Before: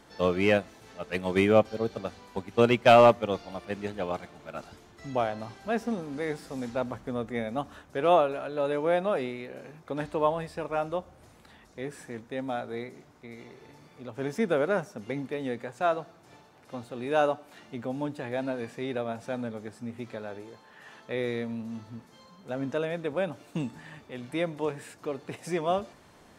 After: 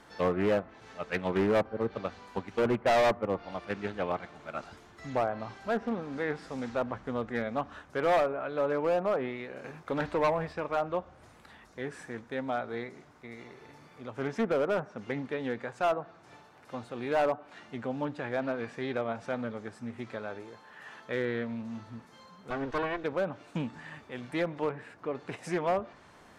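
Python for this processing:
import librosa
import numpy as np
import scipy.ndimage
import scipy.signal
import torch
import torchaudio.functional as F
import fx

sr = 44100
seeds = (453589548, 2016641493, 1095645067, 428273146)

y = fx.lower_of_two(x, sr, delay_ms=2.7, at=(22.5, 23.04))
y = fx.peak_eq(y, sr, hz=1400.0, db=5.5, octaves=1.7)
y = fx.env_lowpass_down(y, sr, base_hz=1300.0, full_db=-21.0)
y = np.clip(y, -10.0 ** (-19.5 / 20.0), 10.0 ** (-19.5 / 20.0))
y = fx.leveller(y, sr, passes=1, at=(9.64, 10.53))
y = fx.peak_eq(y, sr, hz=8000.0, db=-14.0, octaves=2.1, at=(24.71, 25.15))
y = fx.doppler_dist(y, sr, depth_ms=0.22)
y = y * librosa.db_to_amplitude(-2.0)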